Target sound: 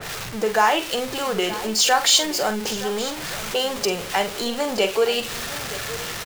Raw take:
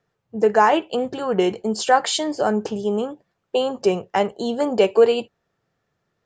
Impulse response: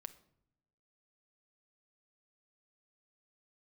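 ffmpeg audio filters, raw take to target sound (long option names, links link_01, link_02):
-filter_complex "[0:a]aeval=exprs='val(0)+0.5*0.0447*sgn(val(0))':channel_layout=same,asplit=2[link_01][link_02];[link_02]acompressor=threshold=-25dB:ratio=6,volume=-2dB[link_03];[link_01][link_03]amix=inputs=2:normalize=0,equalizer=frequency=250:width=0.31:gain=-10,asplit=2[link_04][link_05];[link_05]adelay=46,volume=-10.5dB[link_06];[link_04][link_06]amix=inputs=2:normalize=0,asplit=2[link_07][link_08];[link_08]aecho=0:1:920:0.178[link_09];[link_07][link_09]amix=inputs=2:normalize=0,adynamicequalizer=threshold=0.0251:dfrequency=2100:dqfactor=0.7:tfrequency=2100:tqfactor=0.7:attack=5:release=100:ratio=0.375:range=2:mode=boostabove:tftype=highshelf"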